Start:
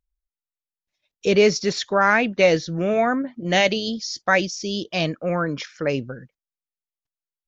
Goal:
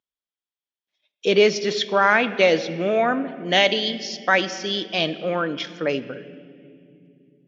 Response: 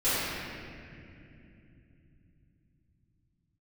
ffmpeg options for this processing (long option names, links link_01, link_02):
-filter_complex "[0:a]highpass=230,lowpass=5200,equalizer=frequency=3300:width_type=o:width=0.22:gain=10,asplit=2[link_01][link_02];[1:a]atrim=start_sample=2205,asetrate=52920,aresample=44100[link_03];[link_02][link_03]afir=irnorm=-1:irlink=0,volume=-25dB[link_04];[link_01][link_04]amix=inputs=2:normalize=0"